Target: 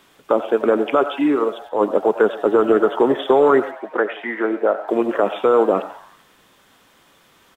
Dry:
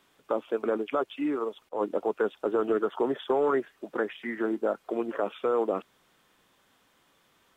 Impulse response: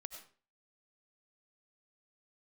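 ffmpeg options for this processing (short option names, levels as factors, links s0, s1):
-filter_complex "[0:a]asettb=1/sr,asplit=3[s0][s1][s2];[s0]atrim=end=3.714[s3];[s1]atrim=start=3.71:end=4.88,asetpts=PTS-STARTPTS,afade=t=in:d=0.004:c=qsin,afade=t=out:st=1.166:d=0.004:c=qsin,bass=f=250:g=-15,treble=f=4000:g=-14[s4];[s2]atrim=start=4.876[s5];[s3][s4]acrossfade=d=0.004:c1=hsin:c2=qsin[s6];[s6][s5]acrossfade=d=0.004:c1=qsin:c2=hsin,asplit=6[s7][s8][s9][s10][s11][s12];[s8]adelay=88,afreqshift=130,volume=0.133[s13];[s9]adelay=176,afreqshift=260,volume=0.0716[s14];[s10]adelay=264,afreqshift=390,volume=0.0389[s15];[s11]adelay=352,afreqshift=520,volume=0.0209[s16];[s12]adelay=440,afreqshift=650,volume=0.0114[s17];[s7][s13][s14][s15][s16][s17]amix=inputs=6:normalize=0,asplit=2[s18][s19];[1:a]atrim=start_sample=2205,atrim=end_sample=6615[s20];[s19][s20]afir=irnorm=-1:irlink=0,volume=1[s21];[s18][s21]amix=inputs=2:normalize=0,volume=2.37"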